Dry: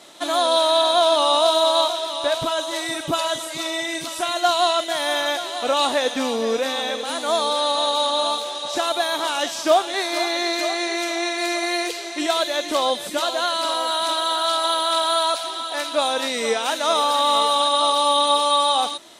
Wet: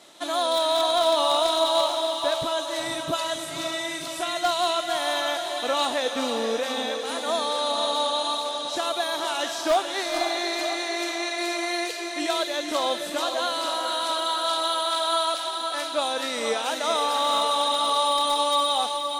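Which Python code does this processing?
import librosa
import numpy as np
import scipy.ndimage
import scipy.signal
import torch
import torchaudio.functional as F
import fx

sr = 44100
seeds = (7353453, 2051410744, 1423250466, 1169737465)

y = 10.0 ** (-9.0 / 20.0) * (np.abs((x / 10.0 ** (-9.0 / 20.0) + 3.0) % 4.0 - 2.0) - 1.0)
y = fx.echo_diffused(y, sr, ms=489, feedback_pct=41, wet_db=-6.5)
y = y * librosa.db_to_amplitude(-5.0)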